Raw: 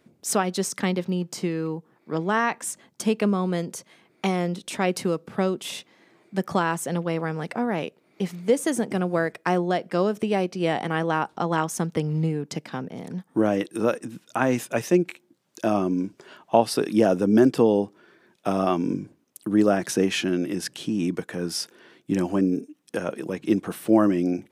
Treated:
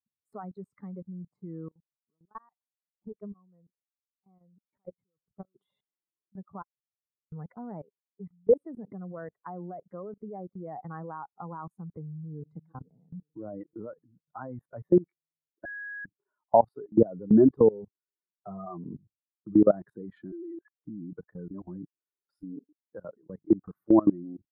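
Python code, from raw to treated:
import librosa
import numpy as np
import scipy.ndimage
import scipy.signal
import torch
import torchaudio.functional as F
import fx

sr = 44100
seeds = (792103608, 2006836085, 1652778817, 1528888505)

y = fx.level_steps(x, sr, step_db=21, at=(1.68, 5.55), fade=0.02)
y = fx.band_squash(y, sr, depth_pct=70, at=(8.51, 10.21))
y = fx.echo_throw(y, sr, start_s=11.77, length_s=0.8, ms=440, feedback_pct=65, wet_db=-16.0)
y = fx.notch_comb(y, sr, f0_hz=280.0, at=(17.69, 19.55))
y = fx.sine_speech(y, sr, at=(20.32, 20.85))
y = fx.edit(y, sr, fx.room_tone_fill(start_s=6.62, length_s=0.7),
    fx.bleep(start_s=15.65, length_s=0.4, hz=1660.0, db=-20.0),
    fx.reverse_span(start_s=21.51, length_s=0.92), tone=tone)
y = fx.bin_expand(y, sr, power=2.0)
y = scipy.signal.sosfilt(scipy.signal.cheby2(4, 40, 2400.0, 'lowpass', fs=sr, output='sos'), y)
y = fx.level_steps(y, sr, step_db=23)
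y = y * librosa.db_to_amplitude(7.0)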